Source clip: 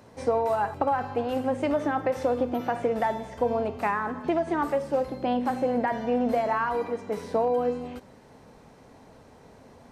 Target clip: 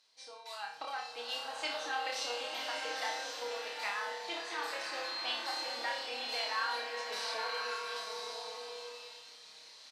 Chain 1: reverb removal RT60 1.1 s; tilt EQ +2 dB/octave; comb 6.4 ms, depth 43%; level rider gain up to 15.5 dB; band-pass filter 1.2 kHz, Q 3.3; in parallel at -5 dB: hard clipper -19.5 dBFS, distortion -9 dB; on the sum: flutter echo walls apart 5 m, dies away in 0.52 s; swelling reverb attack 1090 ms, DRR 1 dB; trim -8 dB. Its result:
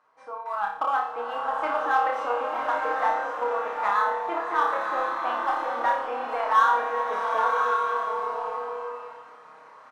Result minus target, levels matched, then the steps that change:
4 kHz band -19.5 dB
change: band-pass filter 4.2 kHz, Q 3.3

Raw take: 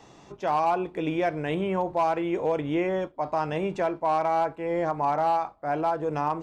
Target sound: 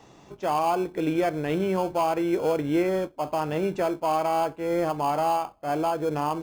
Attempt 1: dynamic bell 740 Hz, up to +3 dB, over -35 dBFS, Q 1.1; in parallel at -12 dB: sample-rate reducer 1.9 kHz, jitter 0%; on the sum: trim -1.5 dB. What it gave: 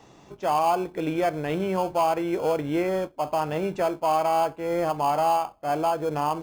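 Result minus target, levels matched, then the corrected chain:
250 Hz band -2.5 dB
dynamic bell 340 Hz, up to +3 dB, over -35 dBFS, Q 1.1; in parallel at -12 dB: sample-rate reducer 1.9 kHz, jitter 0%; on the sum: trim -1.5 dB

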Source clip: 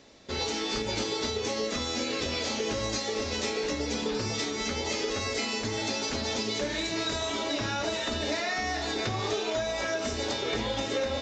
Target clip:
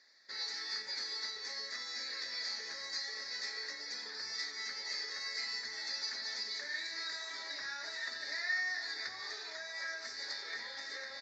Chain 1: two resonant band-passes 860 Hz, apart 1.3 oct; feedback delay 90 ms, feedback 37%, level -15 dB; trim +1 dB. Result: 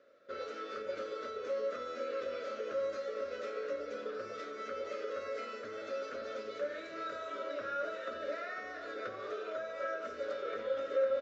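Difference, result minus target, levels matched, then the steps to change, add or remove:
4 kHz band -15.0 dB
change: two resonant band-passes 2.9 kHz, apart 1.3 oct

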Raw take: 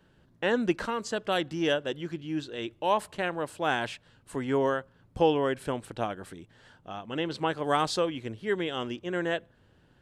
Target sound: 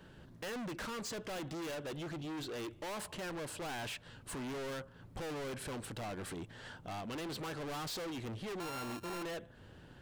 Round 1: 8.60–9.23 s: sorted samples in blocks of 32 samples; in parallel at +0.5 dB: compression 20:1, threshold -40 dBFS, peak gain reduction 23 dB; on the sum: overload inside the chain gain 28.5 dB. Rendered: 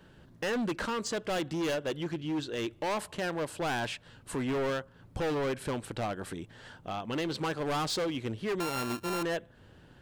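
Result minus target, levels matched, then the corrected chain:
overload inside the chain: distortion -5 dB
8.60–9.23 s: sorted samples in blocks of 32 samples; in parallel at +0.5 dB: compression 20:1, threshold -40 dBFS, peak gain reduction 23 dB; on the sum: overload inside the chain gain 40 dB

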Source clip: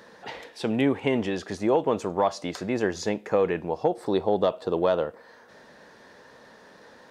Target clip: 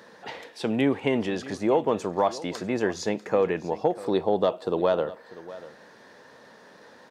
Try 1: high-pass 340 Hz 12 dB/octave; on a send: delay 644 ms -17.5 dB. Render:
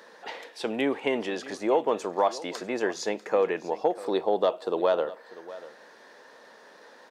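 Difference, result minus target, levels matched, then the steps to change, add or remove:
125 Hz band -11.0 dB
change: high-pass 94 Hz 12 dB/octave

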